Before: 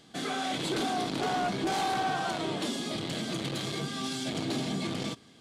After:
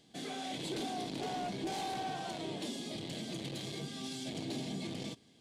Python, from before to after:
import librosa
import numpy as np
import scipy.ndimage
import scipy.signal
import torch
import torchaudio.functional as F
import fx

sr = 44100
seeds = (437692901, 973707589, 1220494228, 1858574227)

y = fx.peak_eq(x, sr, hz=1300.0, db=-11.0, octaves=0.67)
y = F.gain(torch.from_numpy(y), -7.0).numpy()